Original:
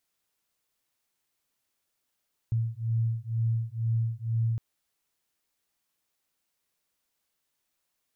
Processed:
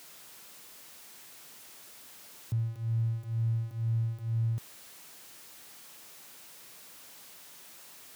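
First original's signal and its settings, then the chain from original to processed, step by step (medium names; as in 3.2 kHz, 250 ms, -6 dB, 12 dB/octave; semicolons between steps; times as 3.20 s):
beating tones 113 Hz, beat 2.1 Hz, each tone -28.5 dBFS 2.06 s
jump at every zero crossing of -45 dBFS; high-pass 110 Hz 12 dB/octave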